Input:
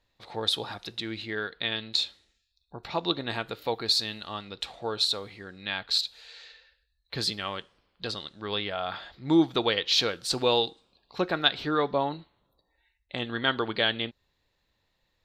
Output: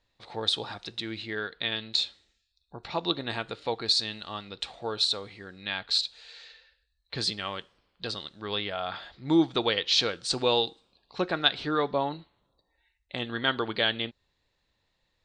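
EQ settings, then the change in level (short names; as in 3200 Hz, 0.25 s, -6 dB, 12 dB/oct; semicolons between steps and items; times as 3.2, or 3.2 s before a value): elliptic low-pass 9000 Hz; 0.0 dB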